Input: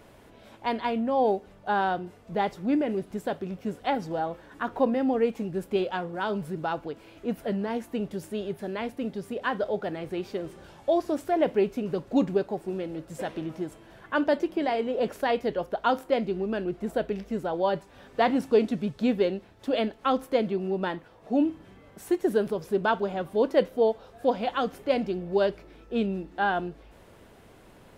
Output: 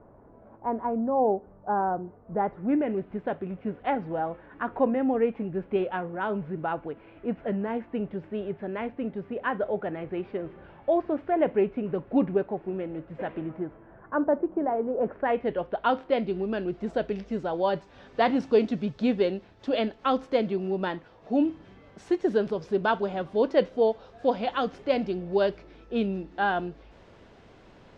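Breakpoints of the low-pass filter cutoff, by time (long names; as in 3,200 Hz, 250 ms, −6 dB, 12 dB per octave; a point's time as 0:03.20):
low-pass filter 24 dB per octave
0:02.21 1,200 Hz
0:02.83 2,500 Hz
0:13.31 2,500 Hz
0:14.19 1,300 Hz
0:14.95 1,300 Hz
0:15.51 3,000 Hz
0:16.86 6,000 Hz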